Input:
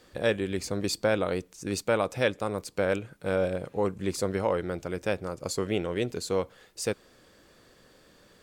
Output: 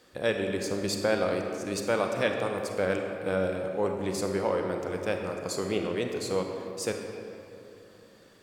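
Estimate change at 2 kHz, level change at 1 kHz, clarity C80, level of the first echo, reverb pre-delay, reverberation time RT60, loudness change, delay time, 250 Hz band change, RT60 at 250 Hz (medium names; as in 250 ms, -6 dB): 0.0 dB, +0.5 dB, 5.0 dB, no echo, 31 ms, 2.8 s, 0.0 dB, no echo, 0.0 dB, 3.4 s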